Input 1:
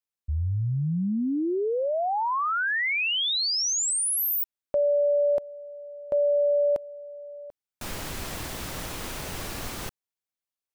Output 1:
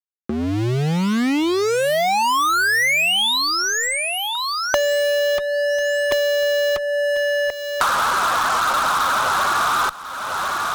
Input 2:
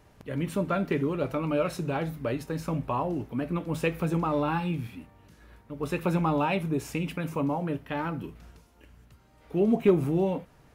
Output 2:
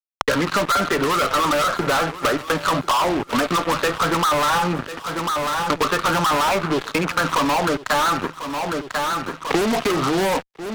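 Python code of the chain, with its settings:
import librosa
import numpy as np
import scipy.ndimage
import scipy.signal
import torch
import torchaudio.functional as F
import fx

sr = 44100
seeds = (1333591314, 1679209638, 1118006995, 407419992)

y = fx.wiener(x, sr, points=15)
y = fx.bandpass_q(y, sr, hz=1300.0, q=3.4)
y = fx.spec_topn(y, sr, count=32)
y = fx.fuzz(y, sr, gain_db=56.0, gate_db=-60.0)
y = fx.echo_feedback(y, sr, ms=1044, feedback_pct=24, wet_db=-19.5)
y = fx.band_squash(y, sr, depth_pct=100)
y = y * 10.0 ** (-4.0 / 20.0)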